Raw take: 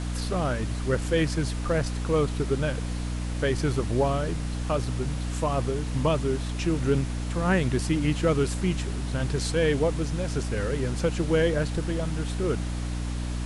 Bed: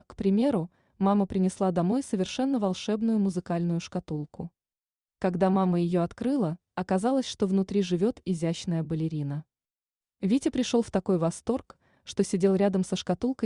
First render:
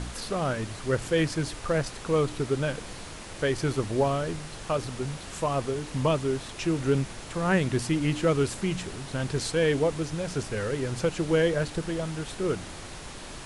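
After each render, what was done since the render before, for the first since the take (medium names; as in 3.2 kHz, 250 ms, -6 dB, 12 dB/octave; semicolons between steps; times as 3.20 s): de-hum 60 Hz, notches 5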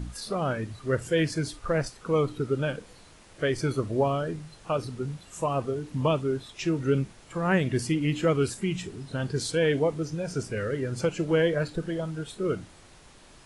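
noise print and reduce 12 dB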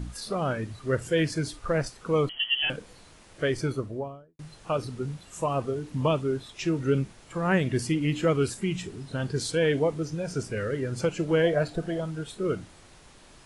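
2.29–2.70 s: frequency inversion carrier 3.2 kHz; 3.47–4.39 s: studio fade out; 11.44–11.99 s: peaking EQ 690 Hz +13.5 dB 0.27 oct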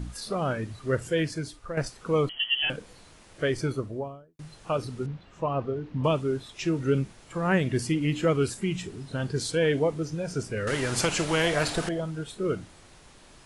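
0.96–1.77 s: fade out, to -9.5 dB; 5.06–6.04 s: distance through air 250 m; 10.67–11.89 s: spectrum-flattening compressor 2:1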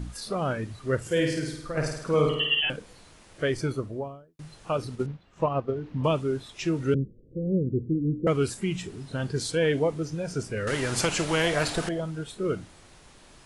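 1.01–2.61 s: flutter echo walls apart 9 m, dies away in 0.79 s; 4.90–5.74 s: transient shaper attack +5 dB, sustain -7 dB; 6.94–8.27 s: steep low-pass 520 Hz 72 dB/octave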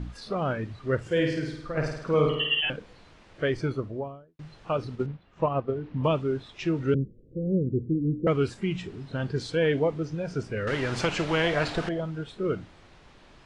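low-pass 3.8 kHz 12 dB/octave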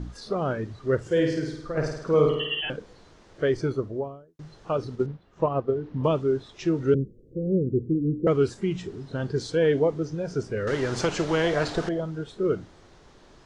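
fifteen-band graphic EQ 400 Hz +5 dB, 2.5 kHz -6 dB, 6.3 kHz +5 dB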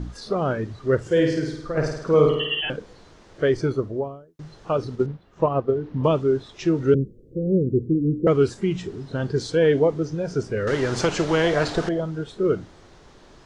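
trim +3.5 dB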